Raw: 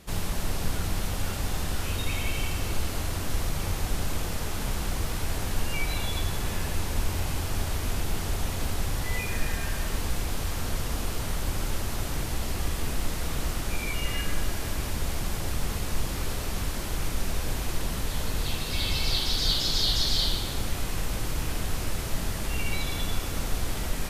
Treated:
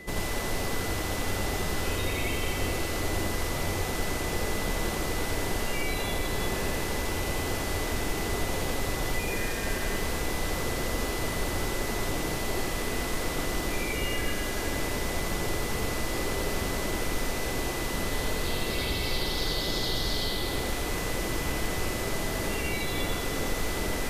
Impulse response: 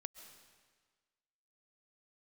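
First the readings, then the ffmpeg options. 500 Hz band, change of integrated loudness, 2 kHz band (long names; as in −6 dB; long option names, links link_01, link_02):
+6.5 dB, +0.5 dB, +4.0 dB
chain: -filter_complex "[0:a]equalizer=frequency=400:width=0.79:gain=10.5,acrossover=split=730|2900|7900[link_01][link_02][link_03][link_04];[link_01]acompressor=threshold=-31dB:ratio=4[link_05];[link_02]acompressor=threshold=-39dB:ratio=4[link_06];[link_03]acompressor=threshold=-42dB:ratio=4[link_07];[link_04]acompressor=threshold=-45dB:ratio=4[link_08];[link_05][link_06][link_07][link_08]amix=inputs=4:normalize=0,aeval=exprs='val(0)+0.00562*sin(2*PI*2000*n/s)':channel_layout=same,asplit=2[link_09][link_10];[1:a]atrim=start_sample=2205,adelay=86[link_11];[link_10][link_11]afir=irnorm=-1:irlink=0,volume=4.5dB[link_12];[link_09][link_12]amix=inputs=2:normalize=0"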